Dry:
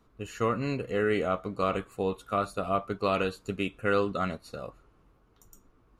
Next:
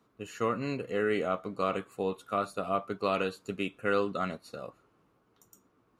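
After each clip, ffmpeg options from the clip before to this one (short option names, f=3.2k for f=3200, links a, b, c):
-af "highpass=140,volume=-2dB"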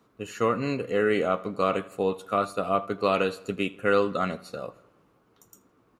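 -filter_complex "[0:a]equalizer=f=510:w=5.2:g=2,asplit=2[a][b];[b]adelay=81,lowpass=f=4.7k:p=1,volume=-20dB,asplit=2[c][d];[d]adelay=81,lowpass=f=4.7k:p=1,volume=0.55,asplit=2[e][f];[f]adelay=81,lowpass=f=4.7k:p=1,volume=0.55,asplit=2[g][h];[h]adelay=81,lowpass=f=4.7k:p=1,volume=0.55[i];[a][c][e][g][i]amix=inputs=5:normalize=0,volume=5dB"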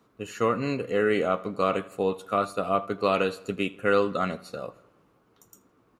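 -af anull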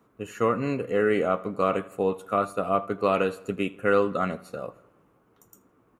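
-af "equalizer=f=4.4k:t=o:w=1.1:g=-9.5,volume=1dB"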